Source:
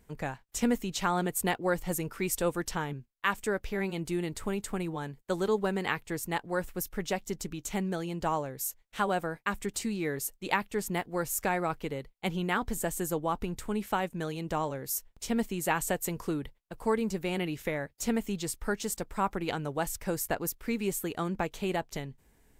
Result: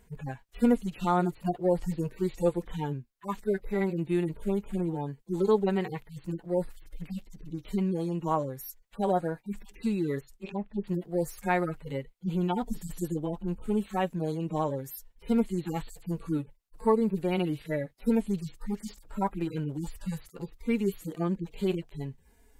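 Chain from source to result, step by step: median-filter separation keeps harmonic; 10.23–10.84 treble ducked by the level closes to 550 Hz, closed at -31.5 dBFS; gain +4.5 dB

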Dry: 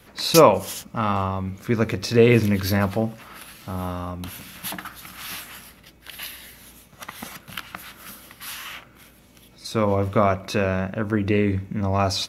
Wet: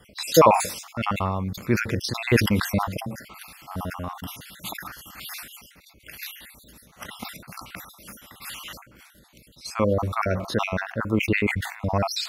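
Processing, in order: random spectral dropouts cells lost 49%; sustainer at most 98 dB/s

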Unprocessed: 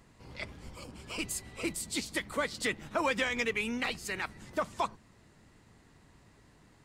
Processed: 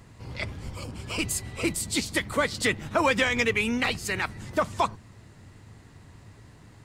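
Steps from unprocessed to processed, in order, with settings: bell 100 Hz +10 dB 0.76 oct; gain +7 dB

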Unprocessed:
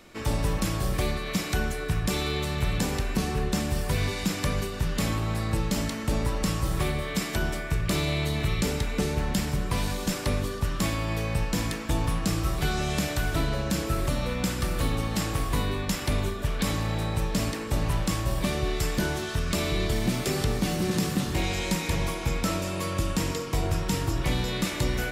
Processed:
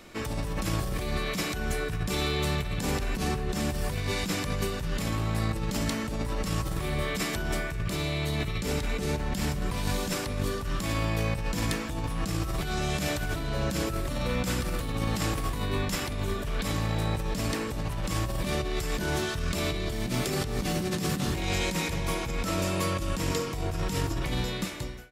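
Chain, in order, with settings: ending faded out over 1.07 s; negative-ratio compressor -29 dBFS, ratio -1

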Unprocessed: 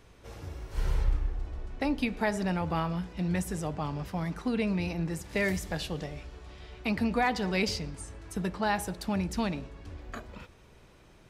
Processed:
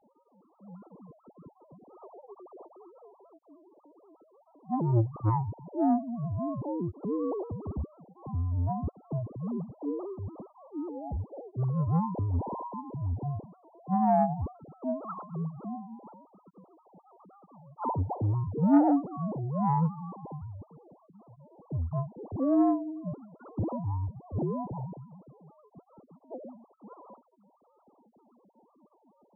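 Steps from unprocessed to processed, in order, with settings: sine-wave speech; wide varispeed 0.385×; core saturation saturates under 370 Hz

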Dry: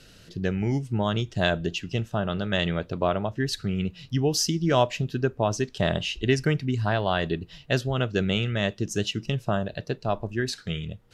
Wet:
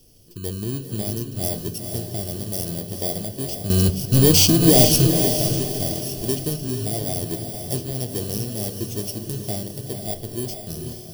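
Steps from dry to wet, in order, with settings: FFT order left unsorted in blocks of 32 samples; 3.7–5.11 sample leveller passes 5; band shelf 1400 Hz -14 dB; diffused feedback echo 0.463 s, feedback 42%, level -5.5 dB; reverb, pre-delay 3 ms, DRR 9 dB; gain -2 dB

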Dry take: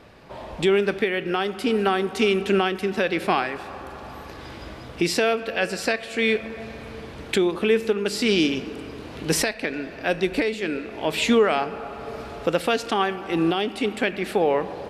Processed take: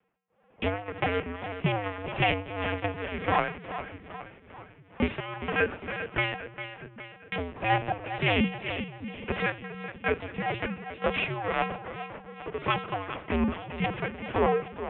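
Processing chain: minimum comb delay 3.5 ms; gate -33 dBFS, range -29 dB; in parallel at +3 dB: compressor 10:1, threshold -35 dBFS, peak gain reduction 18 dB; on the sum: tremolo 1.8 Hz, depth 80%; on a send: split-band echo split 310 Hz, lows 0.648 s, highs 0.407 s, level -10.5 dB; on the sum: LPC vocoder at 8 kHz pitch kept; mistuned SSB -100 Hz 170–3100 Hz; 8.19–8.84 three-band squash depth 40%

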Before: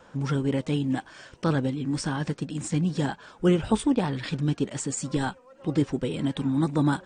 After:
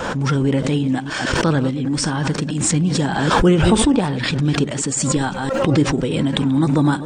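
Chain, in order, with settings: reverse delay 0.157 s, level -13 dB; backwards sustainer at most 30 dB/s; gain +6.5 dB

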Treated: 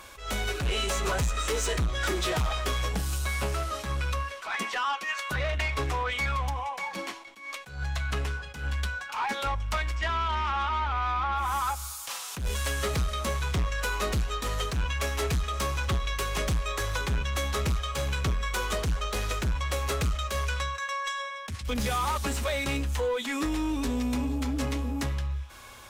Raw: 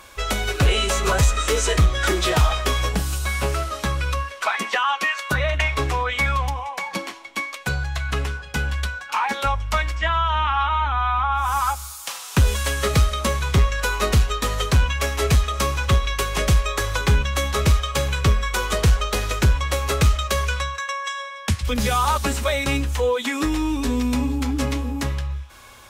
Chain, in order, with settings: in parallel at +1 dB: compressor, threshold -24 dBFS, peak gain reduction 11.5 dB; on the sum: soft clip -14 dBFS, distortion -13 dB; attack slew limiter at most 110 dB/s; gain -8.5 dB

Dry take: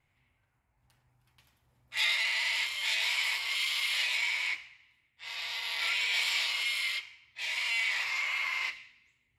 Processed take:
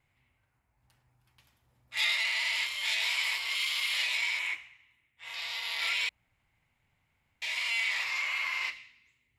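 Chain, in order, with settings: 4.39–5.34 bell 4700 Hz -13.5 dB 0.44 oct; 6.09–7.42 room tone

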